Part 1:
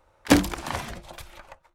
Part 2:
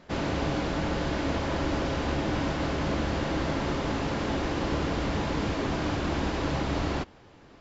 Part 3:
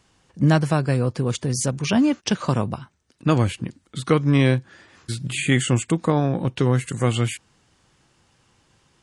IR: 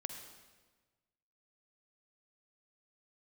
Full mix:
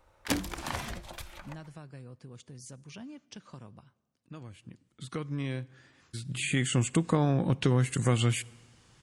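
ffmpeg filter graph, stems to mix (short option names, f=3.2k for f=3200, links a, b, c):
-filter_complex "[0:a]acompressor=threshold=-28dB:ratio=3,volume=-2dB,asplit=2[a][b];[b]volume=-12dB[c];[2:a]acompressor=threshold=-24dB:ratio=2,adelay=1050,volume=-0.5dB,afade=t=in:st=4.54:d=0.72:silence=0.298538,afade=t=in:st=6.17:d=0.79:silence=0.298538,asplit=2[d][e];[e]volume=-15dB[f];[3:a]atrim=start_sample=2205[g];[c][f]amix=inputs=2:normalize=0[h];[h][g]afir=irnorm=-1:irlink=0[i];[a][d][i]amix=inputs=3:normalize=0,equalizer=f=620:w=0.53:g=-3"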